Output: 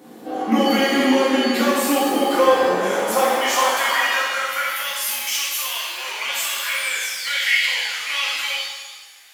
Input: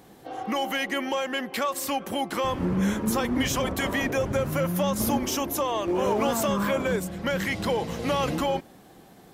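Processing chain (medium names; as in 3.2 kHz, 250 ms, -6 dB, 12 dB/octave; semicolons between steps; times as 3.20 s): painted sound fall, 6.74–8.29 s, 740–9900 Hz -41 dBFS; high-pass sweep 240 Hz -> 2.2 kHz, 1.70–5.07 s; pitch-shifted reverb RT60 1.3 s, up +7 st, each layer -8 dB, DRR -6.5 dB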